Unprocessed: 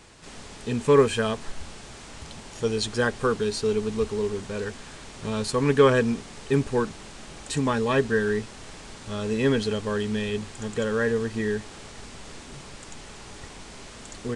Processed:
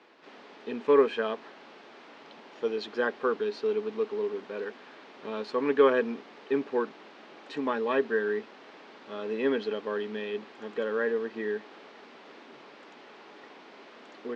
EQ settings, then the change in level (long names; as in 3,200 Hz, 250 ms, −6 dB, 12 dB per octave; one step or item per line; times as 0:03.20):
high-pass filter 270 Hz 24 dB per octave
high-frequency loss of the air 210 metres
parametric band 8,000 Hz −9.5 dB 1 octave
−2.5 dB